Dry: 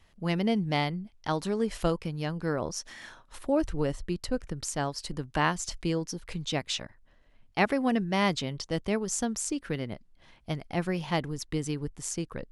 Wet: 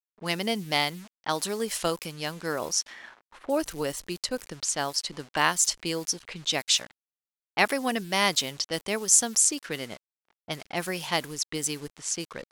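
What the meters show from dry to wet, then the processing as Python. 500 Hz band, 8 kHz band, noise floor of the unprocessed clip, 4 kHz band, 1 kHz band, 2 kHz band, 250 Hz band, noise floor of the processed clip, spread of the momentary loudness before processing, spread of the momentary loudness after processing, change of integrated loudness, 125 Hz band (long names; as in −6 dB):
0.0 dB, +12.0 dB, −61 dBFS, +8.5 dB, +2.0 dB, +5.0 dB, −4.5 dB, below −85 dBFS, 10 LU, 12 LU, +4.0 dB, −7.5 dB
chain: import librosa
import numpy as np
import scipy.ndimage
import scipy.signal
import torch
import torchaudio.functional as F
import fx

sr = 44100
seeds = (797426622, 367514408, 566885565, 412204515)

y = np.where(np.abs(x) >= 10.0 ** (-47.0 / 20.0), x, 0.0)
y = fx.env_lowpass(y, sr, base_hz=1100.0, full_db=-27.0)
y = fx.riaa(y, sr, side='recording')
y = F.gain(torch.from_numpy(y), 2.5).numpy()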